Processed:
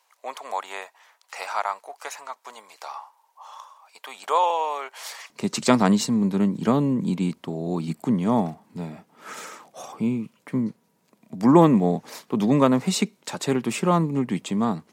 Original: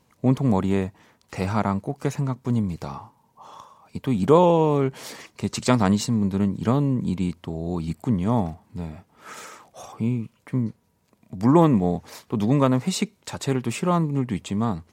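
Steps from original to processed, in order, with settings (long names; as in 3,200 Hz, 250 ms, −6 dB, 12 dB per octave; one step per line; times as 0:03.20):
high-pass filter 710 Hz 24 dB per octave, from 0:05.30 160 Hz
level +2 dB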